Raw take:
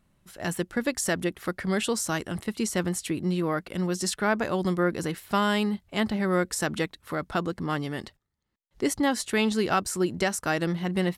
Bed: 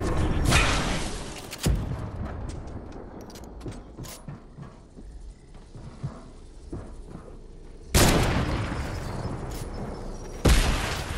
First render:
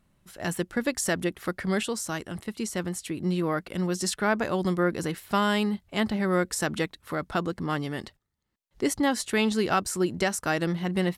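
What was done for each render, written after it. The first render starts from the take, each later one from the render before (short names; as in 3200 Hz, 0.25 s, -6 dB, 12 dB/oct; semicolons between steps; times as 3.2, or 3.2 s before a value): 1.83–3.2 gain -3.5 dB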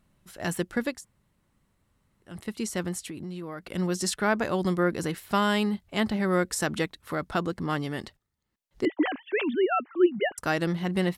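0.93–2.33 room tone, crossfade 0.24 s; 3–3.69 compressor 5:1, threshold -34 dBFS; 8.85–10.38 sine-wave speech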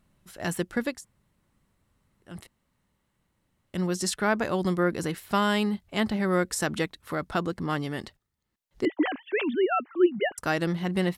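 2.47–3.74 room tone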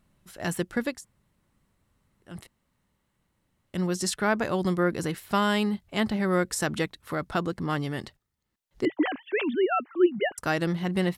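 dynamic EQ 130 Hz, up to +5 dB, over -53 dBFS, Q 5.1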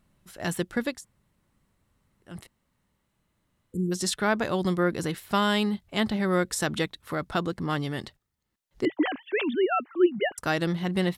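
3.1–3.9 spectral repair 500–6900 Hz before; dynamic EQ 3600 Hz, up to +6 dB, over -52 dBFS, Q 4.1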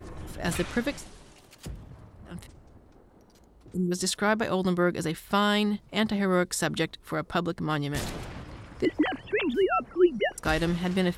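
add bed -15.5 dB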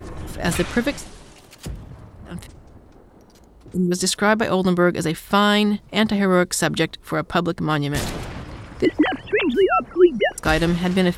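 gain +7.5 dB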